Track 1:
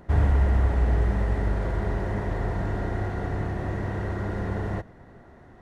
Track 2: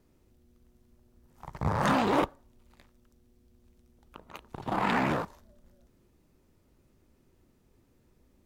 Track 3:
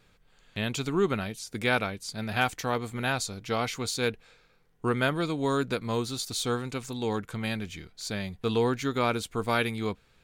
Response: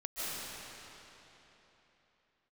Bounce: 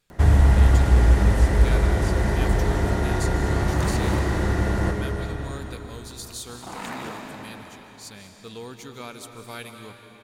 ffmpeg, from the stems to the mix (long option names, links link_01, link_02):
-filter_complex "[0:a]acrossover=split=330|3000[link_01][link_02][link_03];[link_02]acompressor=threshold=-34dB:ratio=6[link_04];[link_01][link_04][link_03]amix=inputs=3:normalize=0,adelay=100,volume=2.5dB,asplit=2[link_05][link_06];[link_06]volume=-4.5dB[link_07];[1:a]adelay=1950,volume=-12dB,asplit=2[link_08][link_09];[link_09]volume=-3dB[link_10];[2:a]volume=-15dB,asplit=2[link_11][link_12];[link_12]volume=-8.5dB[link_13];[3:a]atrim=start_sample=2205[link_14];[link_07][link_10][link_13]amix=inputs=3:normalize=0[link_15];[link_15][link_14]afir=irnorm=-1:irlink=0[link_16];[link_05][link_08][link_11][link_16]amix=inputs=4:normalize=0,equalizer=frequency=12000:width_type=o:width=2.2:gain=13.5"